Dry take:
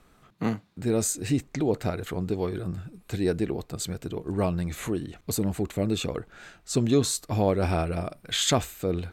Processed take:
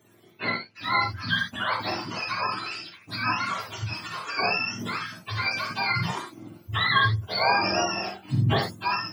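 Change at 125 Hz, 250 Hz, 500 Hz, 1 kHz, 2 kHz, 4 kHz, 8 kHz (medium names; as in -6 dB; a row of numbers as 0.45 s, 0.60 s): -1.0 dB, -8.0 dB, -6.5 dB, +10.0 dB, +15.0 dB, +5.0 dB, -12.0 dB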